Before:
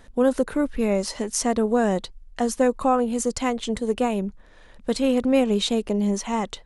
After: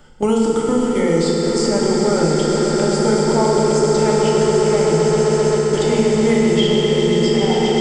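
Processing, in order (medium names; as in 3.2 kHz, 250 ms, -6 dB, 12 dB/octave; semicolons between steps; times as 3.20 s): rippled EQ curve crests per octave 1.6, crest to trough 8 dB; echo with a slow build-up 112 ms, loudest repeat 8, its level -11 dB; gate with hold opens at -13 dBFS; reverse; upward compressor, threshold -19 dBFS; reverse; wide varispeed 0.853×; FDN reverb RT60 3 s, high-frequency decay 0.85×, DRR -4.5 dB; three bands compressed up and down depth 70%; trim -2 dB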